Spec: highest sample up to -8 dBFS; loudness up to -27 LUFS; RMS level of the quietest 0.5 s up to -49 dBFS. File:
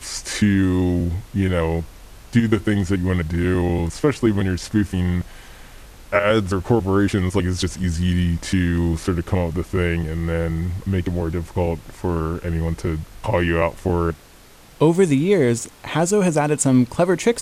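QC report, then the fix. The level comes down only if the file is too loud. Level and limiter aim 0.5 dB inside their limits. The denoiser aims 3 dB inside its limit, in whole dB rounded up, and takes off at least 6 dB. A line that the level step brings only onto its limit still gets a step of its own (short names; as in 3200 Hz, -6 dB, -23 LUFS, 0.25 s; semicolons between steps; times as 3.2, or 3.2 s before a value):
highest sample -5.0 dBFS: fail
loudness -20.5 LUFS: fail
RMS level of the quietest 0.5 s -46 dBFS: fail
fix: gain -7 dB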